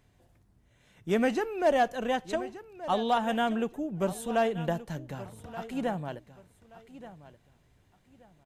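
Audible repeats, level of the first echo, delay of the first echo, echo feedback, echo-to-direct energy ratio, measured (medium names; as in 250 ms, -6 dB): 2, -15.5 dB, 1177 ms, 24%, -15.5 dB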